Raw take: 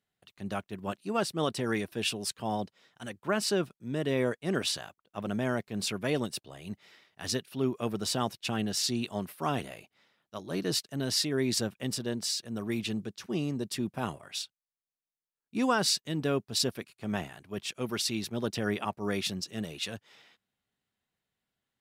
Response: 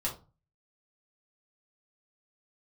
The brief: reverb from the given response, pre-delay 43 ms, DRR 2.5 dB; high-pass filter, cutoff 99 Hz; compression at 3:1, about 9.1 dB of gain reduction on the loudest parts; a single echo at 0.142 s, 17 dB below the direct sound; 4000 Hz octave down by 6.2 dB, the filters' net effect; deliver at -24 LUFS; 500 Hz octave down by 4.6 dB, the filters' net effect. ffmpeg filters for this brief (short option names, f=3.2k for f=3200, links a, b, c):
-filter_complex "[0:a]highpass=99,equalizer=f=500:t=o:g=-6,equalizer=f=4k:t=o:g=-8,acompressor=threshold=-38dB:ratio=3,aecho=1:1:142:0.141,asplit=2[a][b];[1:a]atrim=start_sample=2205,adelay=43[c];[b][c]afir=irnorm=-1:irlink=0,volume=-6.5dB[d];[a][d]amix=inputs=2:normalize=0,volume=15dB"